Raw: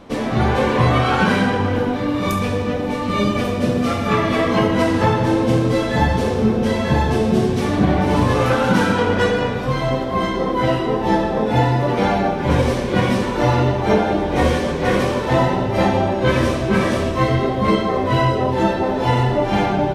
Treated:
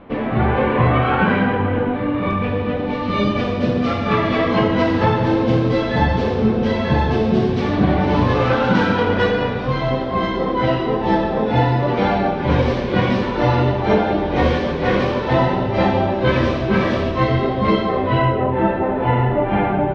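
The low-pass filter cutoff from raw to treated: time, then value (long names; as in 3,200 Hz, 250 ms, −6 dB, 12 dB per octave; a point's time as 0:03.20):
low-pass filter 24 dB per octave
0:02.39 2,800 Hz
0:03.13 4,600 Hz
0:17.84 4,600 Hz
0:18.50 2,500 Hz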